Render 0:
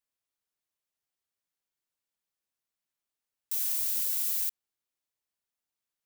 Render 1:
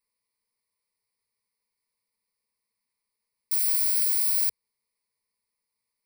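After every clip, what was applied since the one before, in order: rippled EQ curve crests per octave 0.9, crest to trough 17 dB; trim +1.5 dB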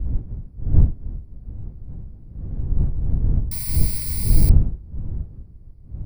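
wind noise 93 Hz -31 dBFS; tilt EQ -2 dB/octave; trim +2.5 dB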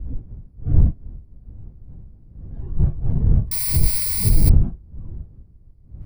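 in parallel at 0 dB: compressor with a negative ratio -18 dBFS, ratio -0.5; on the sum: spectral noise reduction 12 dB; trim -1 dB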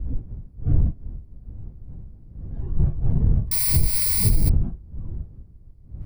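compression 5:1, threshold -15 dBFS, peak gain reduction 8.5 dB; trim +1.5 dB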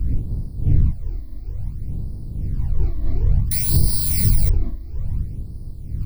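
spectral levelling over time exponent 0.6; phase shifter stages 12, 0.58 Hz, lowest notch 140–2600 Hz

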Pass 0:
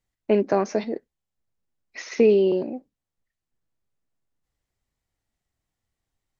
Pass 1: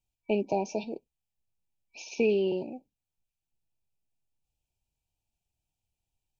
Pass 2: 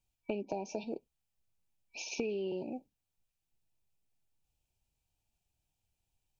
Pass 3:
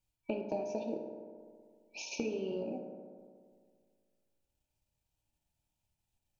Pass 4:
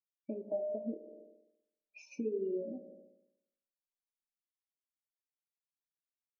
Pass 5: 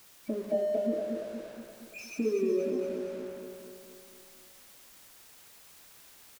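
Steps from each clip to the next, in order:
FFT band-reject 960–2300 Hz; ten-band graphic EQ 250 Hz -5 dB, 500 Hz -6 dB, 2 kHz +6 dB, 4 kHz -4 dB; trim -2.5 dB
compression 10:1, threshold -35 dBFS, peak gain reduction 14 dB; trim +2 dB
transient shaper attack +1 dB, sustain -6 dB; reverberation RT60 2.0 s, pre-delay 3 ms, DRR 1 dB; trim -2 dB
compression 2.5:1, threshold -43 dBFS, peak gain reduction 8.5 dB; spectral contrast expander 2.5:1; trim +1.5 dB
jump at every zero crossing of -51 dBFS; feedback delay 235 ms, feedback 57%, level -5 dB; trim +6 dB

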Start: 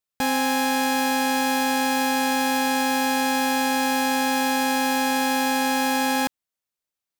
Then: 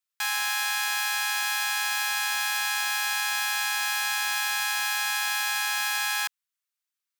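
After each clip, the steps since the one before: inverse Chebyshev high-pass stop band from 540 Hz, stop band 40 dB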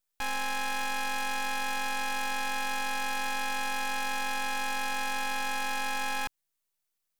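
treble shelf 4.6 kHz +11.5 dB; half-wave rectifier; trim -1.5 dB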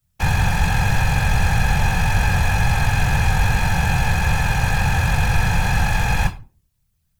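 simulated room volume 190 m³, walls furnished, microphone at 1.1 m; whisper effect; trim +6 dB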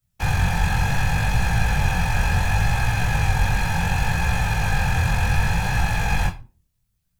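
chorus 0.69 Hz, delay 17 ms, depth 7.7 ms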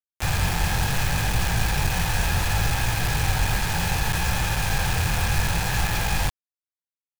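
bit crusher 4-bit; trim -3.5 dB

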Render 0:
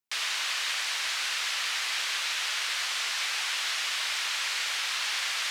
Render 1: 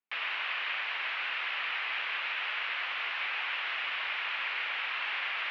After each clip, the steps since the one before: elliptic band-pass 230–2700 Hz, stop band 50 dB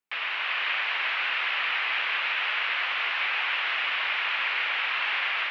level rider gain up to 3 dB; trim +3.5 dB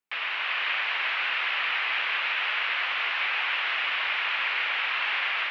short-mantissa float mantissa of 8-bit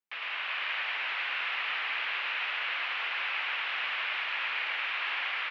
delay 109 ms -3 dB; trim -7 dB

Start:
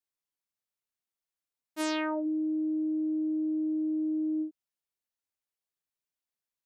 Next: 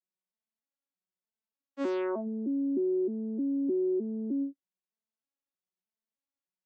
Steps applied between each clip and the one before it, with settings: vocoder on a broken chord minor triad, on F#3, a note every 307 ms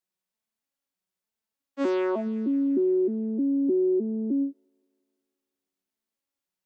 feedback echo behind a high-pass 173 ms, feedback 62%, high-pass 1.9 kHz, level -13 dB; trim +5.5 dB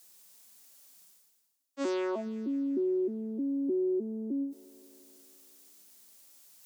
tone controls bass -4 dB, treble +13 dB; reverse; upward compressor, threshold -31 dBFS; reverse; trim -5.5 dB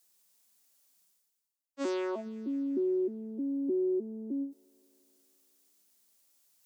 upward expansion 1.5:1, over -50 dBFS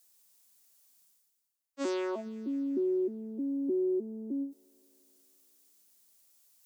treble shelf 5.2 kHz +4 dB

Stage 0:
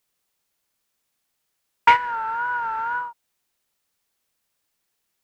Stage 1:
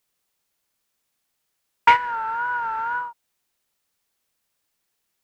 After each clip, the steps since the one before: no audible change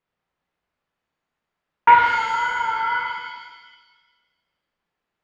low-pass 1.9 kHz 12 dB/octave; pitch-shifted reverb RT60 1.3 s, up +7 st, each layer -8 dB, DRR -0.5 dB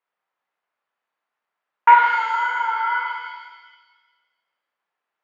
band-pass filter 1 kHz, Q 0.77; tilt EQ +2 dB/octave; trim +1 dB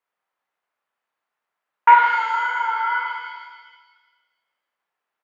delay 497 ms -23.5 dB

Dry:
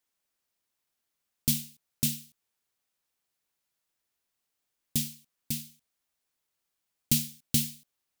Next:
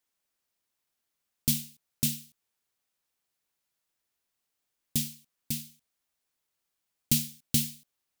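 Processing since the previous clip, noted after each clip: no audible change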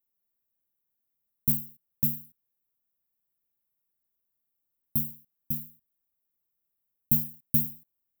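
FFT filter 190 Hz 0 dB, 1.8 kHz -14 dB, 5.4 kHz -28 dB, 15 kHz +6 dB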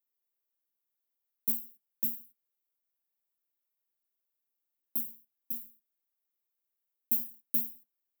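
flange 1.8 Hz, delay 9.7 ms, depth 5.6 ms, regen -52%; high-pass 280 Hz 24 dB/octave

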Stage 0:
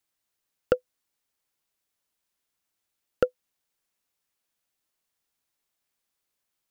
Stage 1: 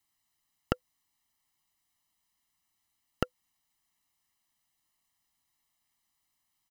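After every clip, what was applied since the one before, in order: comb 1 ms, depth 86%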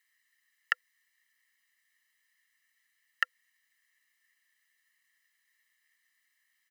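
hum 60 Hz, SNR 21 dB; resonant high-pass 1.8 kHz, resonance Q 11

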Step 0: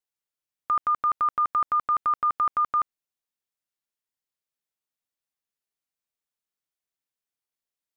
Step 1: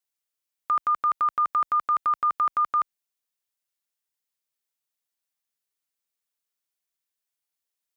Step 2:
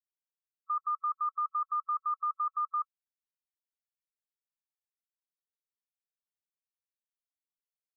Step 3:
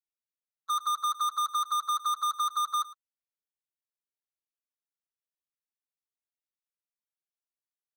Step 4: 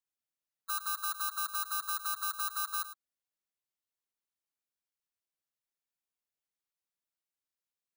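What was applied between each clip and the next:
tilt EQ +1.5 dB/octave
loudest bins only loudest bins 8; static phaser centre 660 Hz, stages 8; trim -5 dB
waveshaping leveller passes 5; delay 108 ms -18.5 dB
bit-reversed sample order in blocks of 16 samples; saturation -32.5 dBFS, distortion -16 dB

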